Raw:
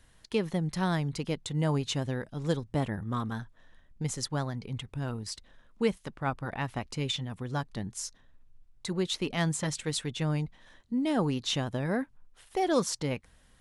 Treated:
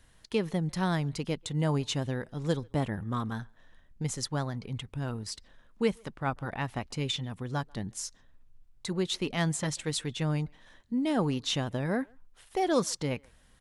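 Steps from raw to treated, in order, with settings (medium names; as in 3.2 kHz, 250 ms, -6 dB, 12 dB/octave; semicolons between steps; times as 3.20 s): speakerphone echo 140 ms, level -28 dB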